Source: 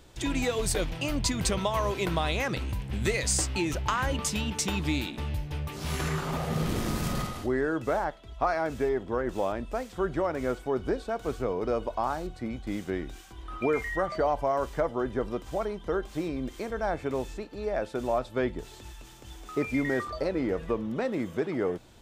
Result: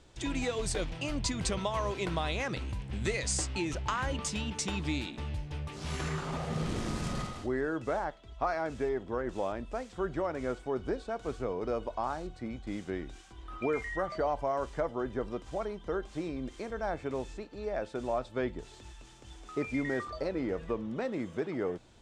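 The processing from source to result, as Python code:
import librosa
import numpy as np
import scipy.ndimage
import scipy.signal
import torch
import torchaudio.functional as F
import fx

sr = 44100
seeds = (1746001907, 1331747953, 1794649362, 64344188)

y = scipy.signal.sosfilt(scipy.signal.butter(4, 9100.0, 'lowpass', fs=sr, output='sos'), x)
y = F.gain(torch.from_numpy(y), -4.5).numpy()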